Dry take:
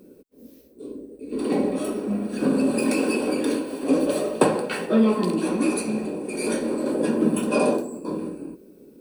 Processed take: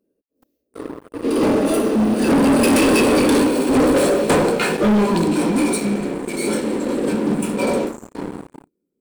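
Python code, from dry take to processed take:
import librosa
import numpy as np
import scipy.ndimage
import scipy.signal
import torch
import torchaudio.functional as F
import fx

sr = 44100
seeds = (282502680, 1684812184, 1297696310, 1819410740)

y = fx.doppler_pass(x, sr, speed_mps=22, closest_m=21.0, pass_at_s=3.05)
y = fx.leveller(y, sr, passes=5)
y = y * librosa.db_to_amplitude(-2.5)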